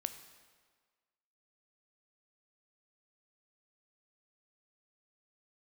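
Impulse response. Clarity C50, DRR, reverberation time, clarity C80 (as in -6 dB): 11.0 dB, 9.0 dB, 1.6 s, 12.0 dB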